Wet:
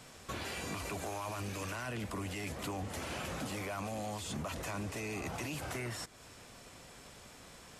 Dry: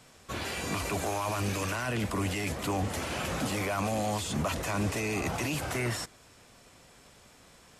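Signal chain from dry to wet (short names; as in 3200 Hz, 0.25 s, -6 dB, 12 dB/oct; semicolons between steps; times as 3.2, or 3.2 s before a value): compressor 3:1, threshold -43 dBFS, peak gain reduction 13.5 dB; gain +2.5 dB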